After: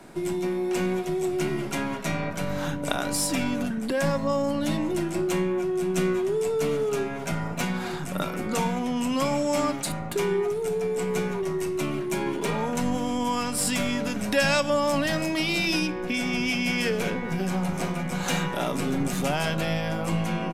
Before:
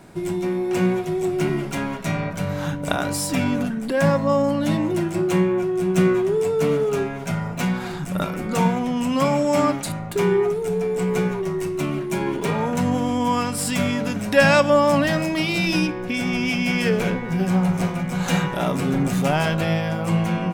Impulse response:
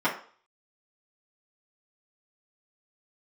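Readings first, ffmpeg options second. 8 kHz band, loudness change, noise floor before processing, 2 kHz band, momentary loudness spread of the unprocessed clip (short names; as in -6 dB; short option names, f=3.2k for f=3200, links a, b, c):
0.0 dB, -5.0 dB, -30 dBFS, -4.0 dB, 7 LU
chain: -filter_complex "[0:a]bandreject=f=60:t=h:w=6,bandreject=f=120:t=h:w=6,bandreject=f=180:t=h:w=6,acrossover=split=120|3000[a][b][c];[b]acompressor=threshold=-27dB:ratio=2[d];[a][d][c]amix=inputs=3:normalize=0,acrossover=split=130[e][f];[e]aeval=exprs='abs(val(0))':c=same[g];[g][f]amix=inputs=2:normalize=0,aresample=32000,aresample=44100"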